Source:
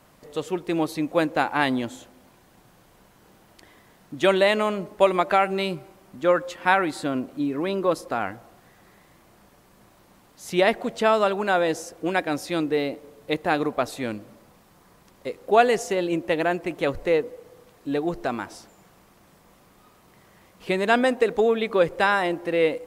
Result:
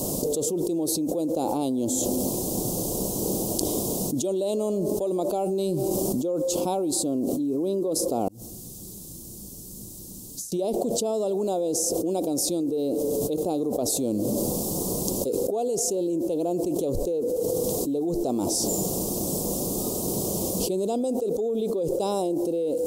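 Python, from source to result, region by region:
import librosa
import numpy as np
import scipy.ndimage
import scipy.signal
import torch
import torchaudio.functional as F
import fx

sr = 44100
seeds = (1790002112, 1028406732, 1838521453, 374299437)

y = fx.chain(x, sr, fx.over_compress(threshold_db=-50.0, ratio=-1.0),
    fx.tone_stack(knobs='6-0-2'), at=(8.28, 10.52))
y = scipy.signal.sosfilt(scipy.signal.cheby1(2, 1.0, [410.0, 7100.0], 'bandstop', fs=sr, output='sos'), y)
y = fx.low_shelf(y, sr, hz=230.0, db=-11.5)
y = fx.env_flatten(y, sr, amount_pct=100)
y = y * librosa.db_to_amplitude(-5.0)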